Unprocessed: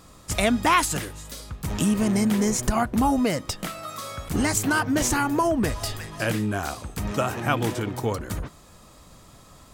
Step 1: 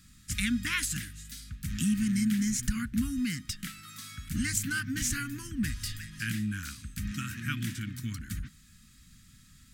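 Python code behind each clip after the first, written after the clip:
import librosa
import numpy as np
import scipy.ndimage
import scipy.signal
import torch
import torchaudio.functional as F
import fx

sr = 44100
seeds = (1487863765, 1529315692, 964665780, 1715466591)

y = scipy.signal.sosfilt(scipy.signal.ellip(3, 1.0, 60, [240.0, 1600.0], 'bandstop', fs=sr, output='sos'), x)
y = y * librosa.db_to_amplitude(-5.0)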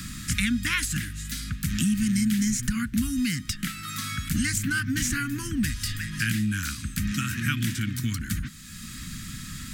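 y = fx.band_squash(x, sr, depth_pct=70)
y = y * librosa.db_to_amplitude(5.5)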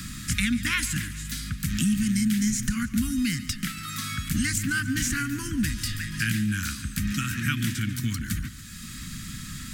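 y = fx.echo_feedback(x, sr, ms=142, feedback_pct=57, wet_db=-15.5)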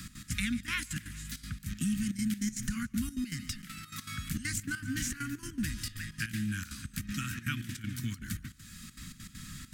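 y = fx.step_gate(x, sr, bpm=199, pattern='x.x.xxxx.x', floor_db=-12.0, edge_ms=4.5)
y = y * librosa.db_to_amplitude(-7.5)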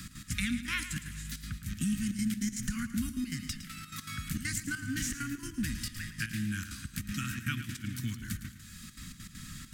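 y = fx.echo_feedback(x, sr, ms=110, feedback_pct=42, wet_db=-12)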